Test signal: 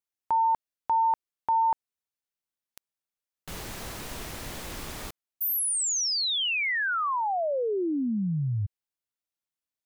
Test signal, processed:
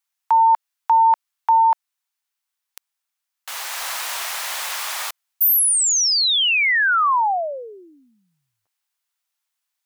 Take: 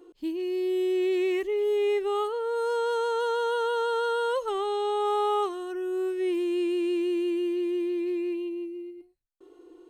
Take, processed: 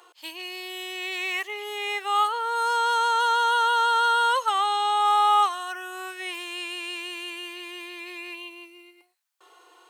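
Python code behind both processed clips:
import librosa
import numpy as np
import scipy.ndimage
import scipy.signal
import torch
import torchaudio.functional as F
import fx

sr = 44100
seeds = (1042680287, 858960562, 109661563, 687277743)

p1 = fx.rider(x, sr, range_db=5, speed_s=0.5)
p2 = x + (p1 * librosa.db_to_amplitude(1.0))
p3 = scipy.signal.sosfilt(scipy.signal.butter(4, 800.0, 'highpass', fs=sr, output='sos'), p2)
y = p3 * librosa.db_to_amplitude(4.5)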